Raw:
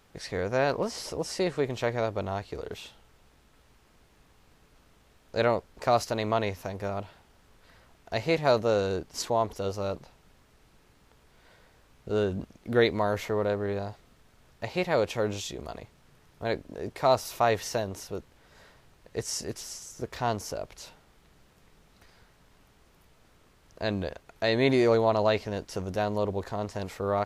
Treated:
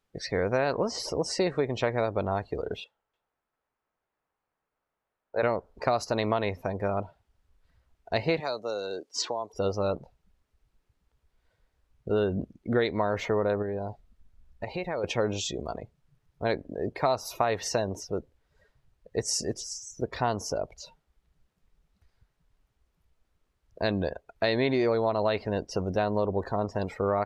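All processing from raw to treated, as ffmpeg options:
-filter_complex "[0:a]asettb=1/sr,asplit=3[a][b][c];[a]atrim=end=2.844[d];[b]atrim=start=2.84:end=5.43,asetpts=PTS-STARTPTS,afade=t=in:d=0.004:c=qsin,afade=t=out:st=2.586:d=0.004:c=qsin,acrossover=split=450 2000:gain=0.251 1 0.178[e][f][g];[e][f][g]amix=inputs=3:normalize=0,aecho=1:1:294:0.316,atrim=end_sample=114219[h];[c]atrim=start=5.426[i];[d][h]acrossfade=d=0.004:c1=hsin:c2=qsin[j];[j][i]acrossfade=d=0.004:c1=qsin:c2=hsin,asettb=1/sr,asplit=3[k][l][m];[k]atrim=end=8.404[n];[l]atrim=start=8.4:end=9.54,asetpts=PTS-STARTPTS,afade=t=in:d=0.004:c=qsin,afade=t=out:st=1.136:d=0.004:c=qsin,lowpass=7.5k,acrossover=split=270|4700[o][p][q];[o]acompressor=threshold=-47dB:ratio=4[r];[p]acompressor=threshold=-35dB:ratio=4[s];[q]acompressor=threshold=-53dB:ratio=4[t];[r][s][t]amix=inputs=3:normalize=0,aemphasis=mode=production:type=bsi[u];[m]atrim=start=9.536[v];[n][u]acrossfade=d=0.004:c1=hsin:c2=qsin[w];[w][v]acrossfade=d=0.004:c1=qsin:c2=hsin,asettb=1/sr,asplit=3[x][y][z];[x]atrim=end=13.624[aa];[y]atrim=start=13.62:end=15.04,asetpts=PTS-STARTPTS,afade=t=in:d=0.004:c=qsin,afade=t=out:st=1.416:d=0.004:c=qsin,asubboost=boost=9:cutoff=57,acompressor=threshold=-33dB:ratio=5:attack=3.2:release=140:knee=1:detection=peak[ab];[z]atrim=start=15.036[ac];[aa][ab]acrossfade=d=0.004:c1=hsin:c2=qsin[ad];[ad][ac]acrossfade=d=0.004:c1=qsin:c2=hsin,afftdn=nr=23:nf=-44,lowshelf=f=68:g=-6.5,acompressor=threshold=-27dB:ratio=6,volume=5dB"

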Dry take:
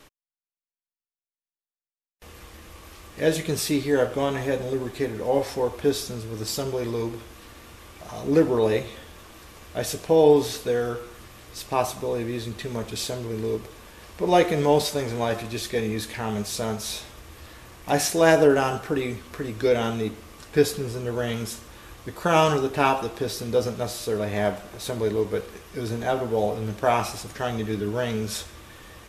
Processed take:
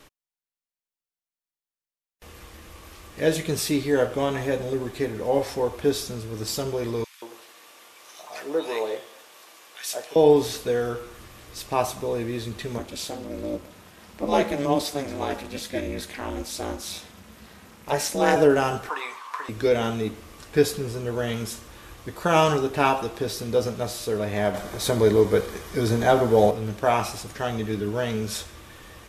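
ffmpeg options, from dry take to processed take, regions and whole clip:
-filter_complex "[0:a]asettb=1/sr,asplit=3[a][b][c];[a]atrim=end=7.044[d];[b]atrim=start=7.04:end=10.16,asetpts=PTS-STARTPTS,afade=t=in:d=0.004:c=qsin,afade=t=out:st=3.116:d=0.004:c=qsin,highpass=610,acrossover=split=1500[e][f];[e]adelay=180[g];[g][f]amix=inputs=2:normalize=0,atrim=end_sample=137592[h];[c]atrim=start=10.156[i];[d][h]acrossfade=d=0.004:c1=hsin:c2=qsin[j];[j][i]acrossfade=d=0.004:c1=qsin:c2=hsin,asettb=1/sr,asplit=3[k][l][m];[k]atrim=end=12.784[n];[l]atrim=start=12.78:end=18.36,asetpts=PTS-STARTPTS,afade=t=in:d=0.004:c=qsin,afade=t=out:st=5.576:d=0.004:c=qsin,aeval=exprs='val(0)*sin(2*PI*140*n/s)':c=same,highpass=53[o];[m]atrim=start=18.356[p];[n][o]acrossfade=d=0.004:c1=hsin:c2=qsin[q];[q][p]acrossfade=d=0.004:c1=qsin:c2=hsin,asettb=1/sr,asplit=3[r][s][t];[r]atrim=end=18.894[u];[s]atrim=start=18.89:end=19.49,asetpts=PTS-STARTPTS,afade=t=in:d=0.004:c=qsin,afade=t=out:st=0.596:d=0.004:c=qsin,highpass=f=1k:t=q:w=8.4,highshelf=f=12k:g=-11[v];[t]atrim=start=19.486[w];[u][v]acrossfade=d=0.004:c1=hsin:c2=qsin[x];[x][w]acrossfade=d=0.004:c1=qsin:c2=hsin,asettb=1/sr,asplit=3[y][z][aa];[y]atrim=end=24.544[ab];[z]atrim=start=24.54:end=26.51,asetpts=PTS-STARTPTS,afade=t=in:d=0.004:c=qsin,afade=t=out:st=1.966:d=0.004:c=qsin,bandreject=f=2.7k:w=7.7,acontrast=69[ac];[aa]atrim=start=26.506[ad];[ab][ac]acrossfade=d=0.004:c1=hsin:c2=qsin[ae];[ae][ad]acrossfade=d=0.004:c1=qsin:c2=hsin"

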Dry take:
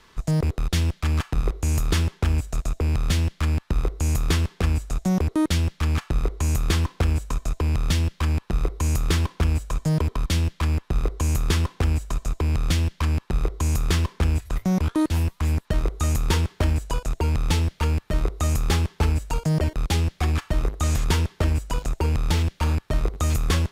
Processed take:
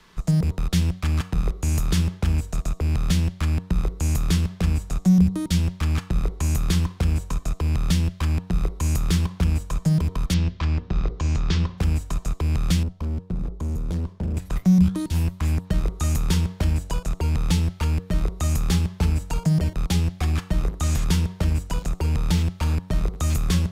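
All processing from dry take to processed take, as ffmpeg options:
-filter_complex "[0:a]asettb=1/sr,asplit=3[a][b][c];[a]atrim=end=10.344[d];[b]atrim=start=10.34:end=11.78,asetpts=PTS-STARTPTS,afade=t=in:d=0.004:c=qsin,afade=t=out:st=1.436:d=0.004:c=qsin,lowpass=f=5.6k:w=0.5412,lowpass=f=5.6k:w=1.3066,bandreject=f=60:t=h:w=6,bandreject=f=120:t=h:w=6,bandreject=f=180:t=h:w=6,bandreject=f=240:t=h:w=6,bandreject=f=300:t=h:w=6,bandreject=f=360:t=h:w=6,bandreject=f=420:t=h:w=6,bandreject=f=480:t=h:w=6,bandreject=f=540:t=h:w=6[e];[c]atrim=start=11.776[f];[d][e]acrossfade=d=0.004:c1=hsin:c2=qsin[g];[g][f]acrossfade=d=0.004:c1=qsin:c2=hsin,asettb=1/sr,asplit=3[h][i][j];[h]atrim=end=12.834[k];[i]atrim=start=12.83:end=14.37,asetpts=PTS-STARTPTS,afade=t=in:d=0.004:c=qsin,afade=t=out:st=1.536:d=0.004:c=qsin,lowpass=f=2.5k:p=1,equalizer=f=1.9k:t=o:w=2.7:g=-13,asoftclip=type=hard:threshold=-24dB[l];[j]atrim=start=14.366[m];[k][l]acrossfade=d=0.004:c1=hsin:c2=qsin[n];[n][m]acrossfade=d=0.004:c1=qsin:c2=hsin,equalizer=f=180:w=7.5:g=14.5,bandreject=f=93.49:t=h:w=4,bandreject=f=186.98:t=h:w=4,bandreject=f=280.47:t=h:w=4,bandreject=f=373.96:t=h:w=4,bandreject=f=467.45:t=h:w=4,bandreject=f=560.94:t=h:w=4,bandreject=f=654.43:t=h:w=4,bandreject=f=747.92:t=h:w=4,bandreject=f=841.41:t=h:w=4,bandreject=f=934.9:t=h:w=4,bandreject=f=1.02839k:t=h:w=4,bandreject=f=1.12188k:t=h:w=4,bandreject=f=1.21537k:t=h:w=4,bandreject=f=1.30886k:t=h:w=4,acrossover=split=220|3000[o][p][q];[p]acompressor=threshold=-31dB:ratio=6[r];[o][r][q]amix=inputs=3:normalize=0"

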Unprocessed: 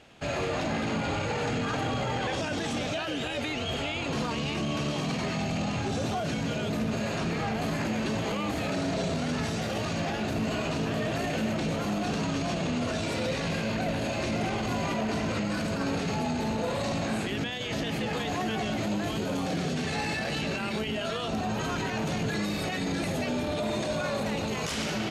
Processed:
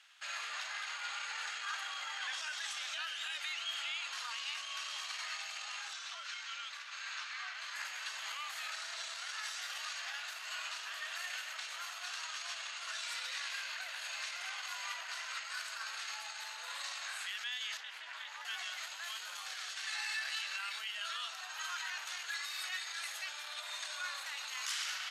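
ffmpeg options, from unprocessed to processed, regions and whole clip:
-filter_complex "[0:a]asettb=1/sr,asplit=3[a][b][c];[a]atrim=end=5.934[d];[b]atrim=start=5.93:end=7.76,asetpts=PTS-STARTPTS,afade=t=in:d=0.004:c=qsin,afade=t=out:st=1.826:d=0.004:c=qsin,afreqshift=-67,highpass=780,lowpass=6.1k[e];[c]atrim=start=7.756[f];[d][e]acrossfade=d=0.004:c1=hsin:c2=qsin[g];[g][f]acrossfade=d=0.004:c1=qsin:c2=hsin,asettb=1/sr,asplit=3[h][i][j];[h]atrim=end=17.774[k];[i]atrim=start=17.77:end=18.45,asetpts=PTS-STARTPTS,afade=t=in:d=0.004:c=qsin,afade=t=out:st=0.676:d=0.004:c=qsin,highshelf=f=4.5k:g=-11,aeval=exprs='val(0)*sin(2*PI*140*n/s)':c=same[l];[j]atrim=start=18.446[m];[k][l]acrossfade=d=0.004:c1=hsin:c2=qsin[n];[n][m]acrossfade=d=0.004:c1=qsin:c2=hsin,highpass=f=1.3k:w=0.5412,highpass=f=1.3k:w=1.3066,equalizer=f=2.4k:t=o:w=0.35:g=-4.5,volume=-2.5dB"

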